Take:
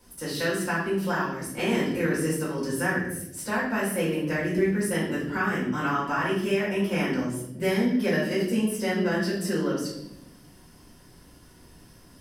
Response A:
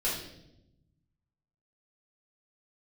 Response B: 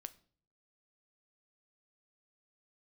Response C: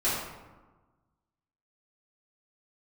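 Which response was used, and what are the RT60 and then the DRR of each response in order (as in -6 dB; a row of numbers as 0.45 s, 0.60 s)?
A; 0.85 s, 0.50 s, 1.3 s; -8.5 dB, 11.5 dB, -11.0 dB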